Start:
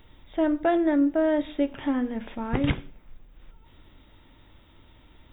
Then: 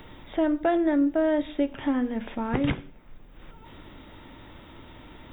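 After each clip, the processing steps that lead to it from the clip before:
multiband upward and downward compressor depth 40%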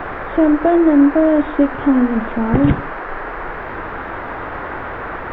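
tilt shelving filter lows +8 dB
noise in a band 320–1,700 Hz −33 dBFS
level +5.5 dB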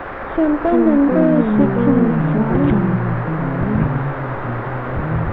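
one-sided soft clipper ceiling −8.5 dBFS
steady tone 540 Hz −35 dBFS
delay with pitch and tempo change per echo 221 ms, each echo −5 semitones, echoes 3
level −2 dB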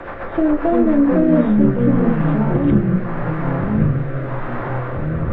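rotating-speaker cabinet horn 7.5 Hz, later 0.85 Hz, at 0:00.68
convolution reverb RT60 0.30 s, pre-delay 6 ms, DRR 5 dB
level −1 dB

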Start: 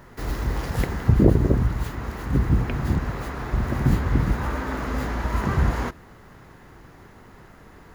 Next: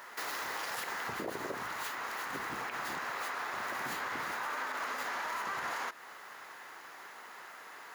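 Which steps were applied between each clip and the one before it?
high-pass filter 930 Hz 12 dB per octave
brickwall limiter −27.5 dBFS, peak gain reduction 10 dB
downward compressor 2 to 1, threshold −43 dBFS, peak gain reduction 6 dB
level +5 dB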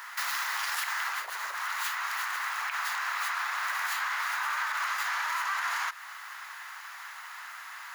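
high-pass filter 1,000 Hz 24 dB per octave
level +7.5 dB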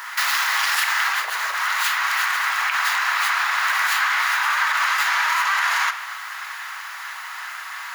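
rectangular room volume 800 cubic metres, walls mixed, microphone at 0.61 metres
dynamic equaliser 3,000 Hz, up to +4 dB, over −45 dBFS, Q 0.76
level +8.5 dB

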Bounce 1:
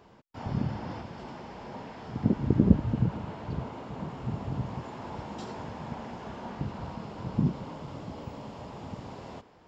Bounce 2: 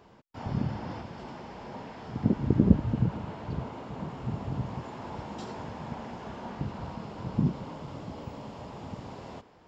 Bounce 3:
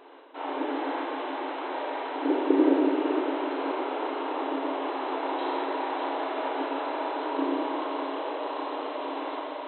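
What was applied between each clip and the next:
no processing that can be heard
feedback echo with a high-pass in the loop 602 ms, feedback 76%, high-pass 330 Hz, level −7 dB; four-comb reverb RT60 2.2 s, combs from 29 ms, DRR −2.5 dB; brick-wall band-pass 260–4,100 Hz; level +6 dB

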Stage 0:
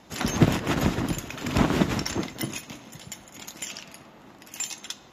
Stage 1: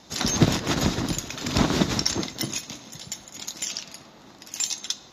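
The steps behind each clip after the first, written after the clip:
flat-topped bell 4,900 Hz +9 dB 1.1 octaves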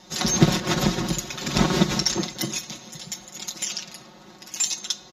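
comb filter 5.5 ms, depth 88%
level −1 dB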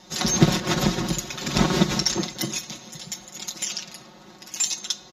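no processing that can be heard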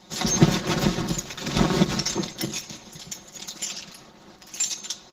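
Opus 16 kbit/s 48,000 Hz

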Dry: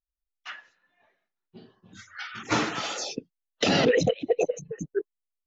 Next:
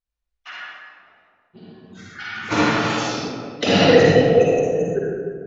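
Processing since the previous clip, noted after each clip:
high-frequency loss of the air 64 metres
convolution reverb RT60 1.9 s, pre-delay 45 ms, DRR −6 dB
level +2 dB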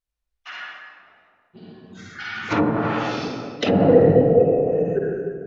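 treble cut that deepens with the level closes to 720 Hz, closed at −14 dBFS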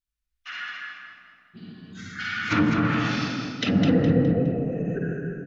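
automatic gain control gain up to 4 dB
flat-topped bell 610 Hz −12 dB
on a send: repeating echo 207 ms, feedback 33%, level −6 dB
on the sum: level −2.5 dB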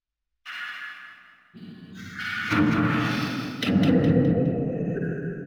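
running median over 5 samples

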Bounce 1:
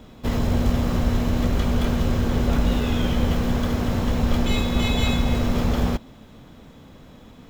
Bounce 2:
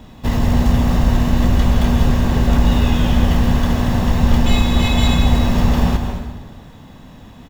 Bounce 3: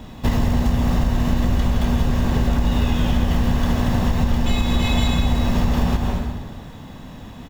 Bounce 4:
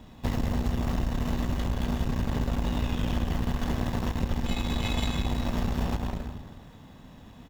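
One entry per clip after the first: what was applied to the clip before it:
comb filter 1.1 ms, depth 36%; dense smooth reverb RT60 1.4 s, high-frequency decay 0.75×, pre-delay 120 ms, DRR 5 dB; level +4 dB
downward compressor, threshold −17 dBFS, peak gain reduction 9.5 dB; level +2.5 dB
harmonic generator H 3 −18 dB, 6 −21 dB, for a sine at −6 dBFS; level −7 dB

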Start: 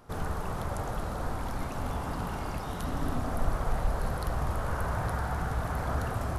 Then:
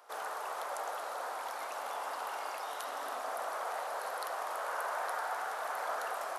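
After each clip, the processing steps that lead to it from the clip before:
high-pass filter 550 Hz 24 dB per octave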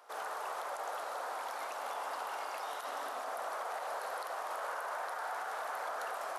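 high-shelf EQ 10,000 Hz −3.5 dB
brickwall limiter −30 dBFS, peak gain reduction 7 dB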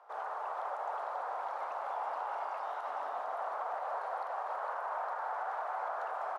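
resonant band-pass 840 Hz, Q 1.4
single-tap delay 453 ms −6.5 dB
level +3 dB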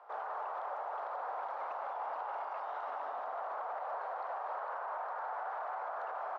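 brickwall limiter −34 dBFS, peak gain reduction 7.5 dB
high-frequency loss of the air 150 metres
level +3 dB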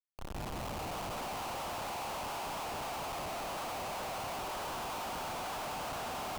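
fade in at the beginning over 1.73 s
backwards echo 463 ms −8 dB
comparator with hysteresis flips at −46.5 dBFS
level +1 dB

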